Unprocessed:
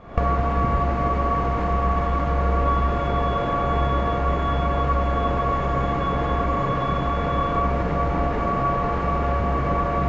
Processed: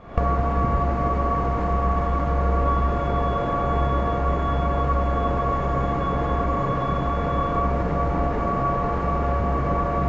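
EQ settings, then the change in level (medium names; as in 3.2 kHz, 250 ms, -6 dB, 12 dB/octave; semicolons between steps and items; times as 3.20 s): dynamic bell 2.9 kHz, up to -5 dB, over -40 dBFS, Q 0.79; 0.0 dB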